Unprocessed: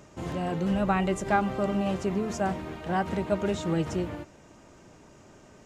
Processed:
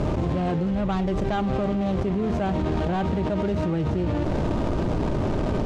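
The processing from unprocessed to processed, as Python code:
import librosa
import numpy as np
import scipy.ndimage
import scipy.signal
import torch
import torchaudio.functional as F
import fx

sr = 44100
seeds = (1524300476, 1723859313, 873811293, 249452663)

y = scipy.ndimage.median_filter(x, 25, mode='constant')
y = scipy.signal.sosfilt(scipy.signal.butter(2, 6100.0, 'lowpass', fs=sr, output='sos'), y)
y = fx.low_shelf(y, sr, hz=73.0, db=12.0)
y = fx.env_flatten(y, sr, amount_pct=100)
y = F.gain(torch.from_numpy(y), -2.5).numpy()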